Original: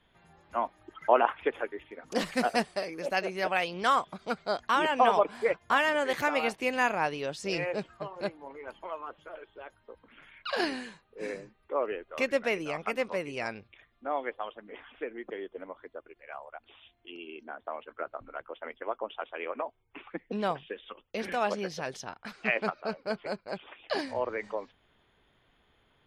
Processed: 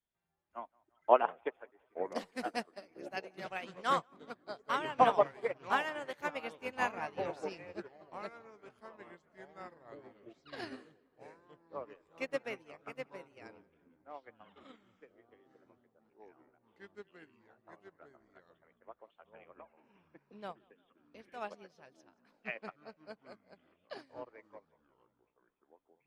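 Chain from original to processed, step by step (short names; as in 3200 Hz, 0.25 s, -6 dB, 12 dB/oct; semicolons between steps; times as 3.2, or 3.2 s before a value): on a send: tape echo 0.179 s, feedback 64%, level -14 dB, low-pass 3200 Hz; on the sum: echoes that change speed 0.507 s, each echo -5 st, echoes 3, each echo -6 dB; upward expander 2.5:1, over -37 dBFS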